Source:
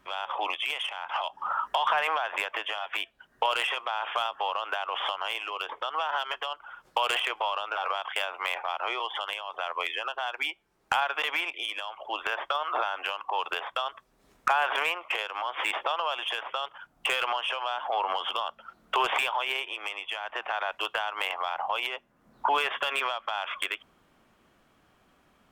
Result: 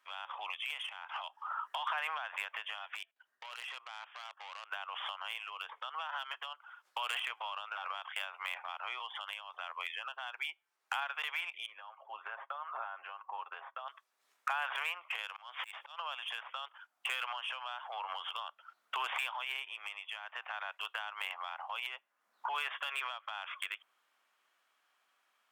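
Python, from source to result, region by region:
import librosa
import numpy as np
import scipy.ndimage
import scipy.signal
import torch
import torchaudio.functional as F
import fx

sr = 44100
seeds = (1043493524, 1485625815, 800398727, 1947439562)

y = fx.chain(x, sr, fx.low_shelf(hz=370.0, db=9.0),
    fx.level_steps(step_db=17),
    fx.transformer_sat(knee_hz=2900.0), at=(2.95, 4.71))
y = fx.chain(y, sr, fx.lowpass(hz=1300.0, slope=12),
    fx.comb(ms=7.4, depth=0.44),
    fx.quant_float(bits=8), at=(11.66, 13.88))
y = fx.chain(y, sr, fx.high_shelf(hz=4000.0, db=9.5),
    fx.auto_swell(attack_ms=259.0), at=(15.23, 15.98))
y = scipy.signal.sosfilt(scipy.signal.butter(2, 1100.0, 'highpass', fs=sr, output='sos'), y)
y = fx.dynamic_eq(y, sr, hz=5000.0, q=1.2, threshold_db=-48.0, ratio=4.0, max_db=-5)
y = F.gain(torch.from_numpy(y), -7.0).numpy()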